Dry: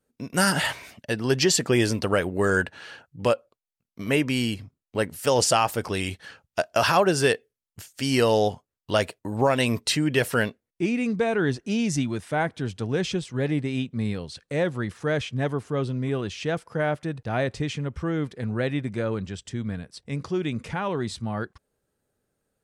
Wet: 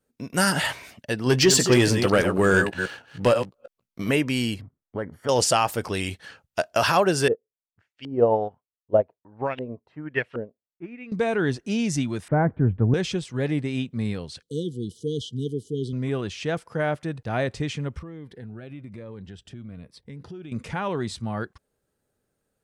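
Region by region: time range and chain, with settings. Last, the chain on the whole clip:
0:01.26–0:04.11: delay that plays each chunk backwards 160 ms, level −8.5 dB + leveller curve on the samples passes 1 + double-tracking delay 16 ms −12.5 dB
0:04.61–0:05.29: downward compressor 3 to 1, threshold −25 dBFS + Savitzky-Golay smoothing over 41 samples
0:07.28–0:11.12: auto-filter low-pass saw up 1.3 Hz 390–3,200 Hz + expander for the loud parts 2.5 to 1, over −27 dBFS
0:12.28–0:12.94: low-pass filter 1,900 Hz 24 dB per octave + spectral tilt −3.5 dB per octave
0:14.42–0:15.93: linear-phase brick-wall band-stop 500–2,900 Hz + low-shelf EQ 70 Hz −11.5 dB
0:17.99–0:20.52: downward compressor 5 to 1, threshold −36 dBFS + parametric band 7,100 Hz −12 dB 1.2 octaves + phaser whose notches keep moving one way falling 1.1 Hz
whole clip: no processing

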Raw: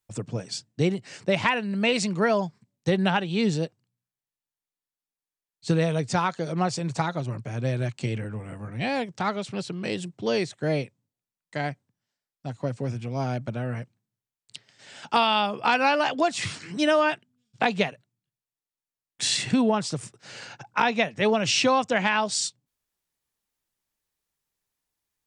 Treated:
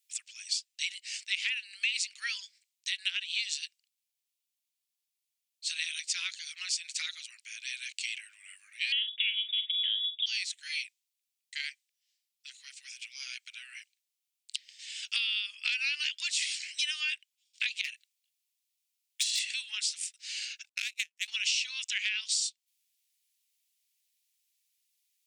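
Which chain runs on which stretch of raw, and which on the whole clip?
0:08.92–0:10.26: double-tracking delay 44 ms −10.5 dB + voice inversion scrambler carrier 3,600 Hz
0:17.81–0:19.39: compressor whose output falls as the input rises −28 dBFS, ratio −0.5 + hard clipping −22 dBFS
0:20.69–0:21.28: Butterworth high-pass 1,300 Hz 48 dB per octave + parametric band 3,600 Hz −5 dB 1.1 octaves + power curve on the samples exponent 2
whole clip: Butterworth high-pass 2,300 Hz 36 dB per octave; downward compressor 6 to 1, threshold −35 dBFS; level +7 dB

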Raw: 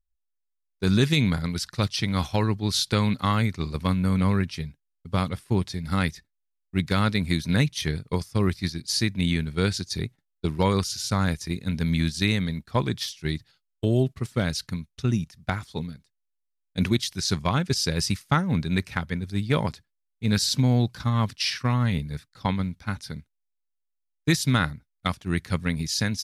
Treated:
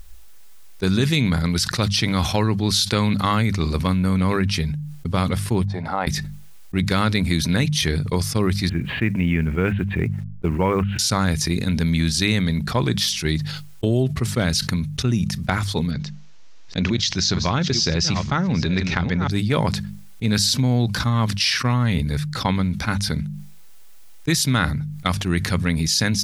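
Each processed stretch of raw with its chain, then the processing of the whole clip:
0:05.65–0:06.07: downward expander −37 dBFS + resonant band-pass 780 Hz, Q 3.3
0:08.69–0:10.99: Butterworth low-pass 2,900 Hz 72 dB per octave + log-companded quantiser 8 bits
0:15.91–0:19.31: delay that plays each chunk backwards 481 ms, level −14 dB + Butterworth low-pass 6,700 Hz 48 dB per octave + downward compressor 2.5 to 1, threshold −24 dBFS
whole clip: mains-hum notches 50/100/150/200 Hz; envelope flattener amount 70%

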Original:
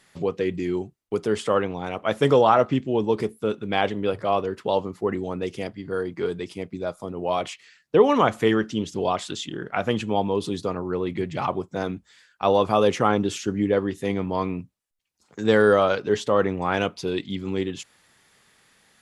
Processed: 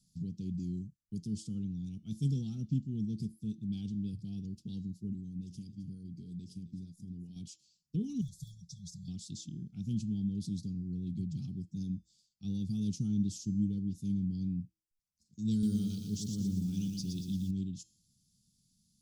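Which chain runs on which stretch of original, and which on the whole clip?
0:05.12–0:07.36: downward compressor 2.5 to 1, threshold −30 dBFS + single-tap delay 263 ms −14 dB
0:08.21–0:09.08: de-essing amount 80% + linear-phase brick-wall band-stop 170–3,300 Hz + comb filter 4.6 ms, depth 81%
0:15.51–0:17.51: high-shelf EQ 2,100 Hz +5.5 dB + feedback echo at a low word length 117 ms, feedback 55%, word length 7 bits, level −4 dB
whole clip: elliptic band-stop filter 200–5,100 Hz, stop band 50 dB; high-shelf EQ 5,000 Hz −10 dB; hum removal 322.7 Hz, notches 23; level −2.5 dB

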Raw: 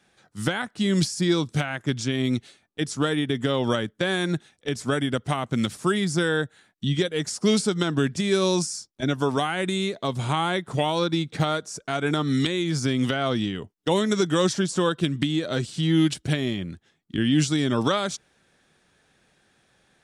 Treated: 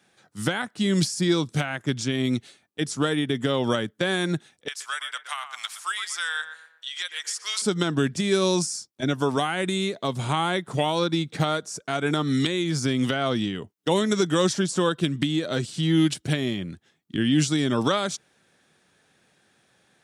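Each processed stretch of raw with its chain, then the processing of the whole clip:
0:04.68–0:07.62: high-pass filter 1,100 Hz 24 dB per octave + tape delay 121 ms, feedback 48%, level −7 dB, low-pass 1,500 Hz
whole clip: high-pass filter 96 Hz; high-shelf EQ 9,800 Hz +4 dB

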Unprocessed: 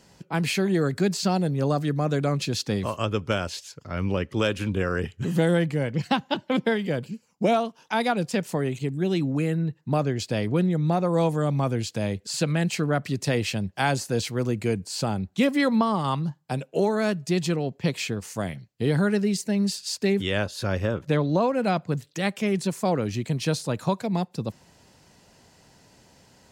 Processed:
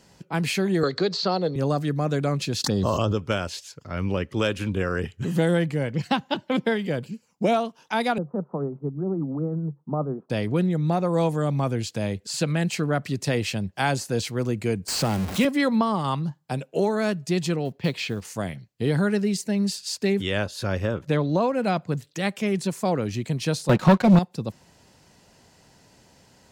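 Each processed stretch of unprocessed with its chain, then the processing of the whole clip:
0:00.83–0:01.56: loudspeaker in its box 200–5,000 Hz, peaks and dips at 220 Hz −8 dB, 480 Hz +8 dB, 1,200 Hz +6 dB, 1,600 Hz −3 dB, 2,500 Hz −6 dB, 4,200 Hz +9 dB + multiband upward and downward compressor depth 70%
0:02.64–0:03.17: phaser swept by the level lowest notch 410 Hz, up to 2,200 Hz, full sweep at −24.5 dBFS + envelope flattener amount 100%
0:08.18–0:10.30: Chebyshev band-pass filter 140–1,300 Hz, order 5 + amplitude tremolo 8.7 Hz, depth 35%
0:14.88–0:15.45: converter with a step at zero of −28 dBFS + notch filter 3,500 Hz, Q 25 + multiband upward and downward compressor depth 40%
0:17.65–0:18.25: high shelf with overshoot 5,500 Hz −6.5 dB, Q 1.5 + floating-point word with a short mantissa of 4 bits
0:23.69–0:24.19: high-frequency loss of the air 150 metres + comb filter 5.5 ms, depth 67% + leveller curve on the samples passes 3
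whole clip: no processing

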